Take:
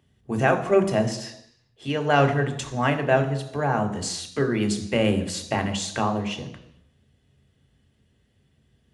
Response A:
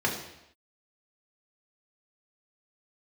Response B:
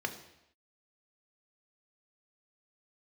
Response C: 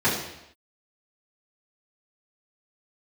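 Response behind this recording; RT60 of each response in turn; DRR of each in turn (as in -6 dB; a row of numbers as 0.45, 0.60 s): B; not exponential, not exponential, not exponential; -2.0, 5.0, -11.0 dB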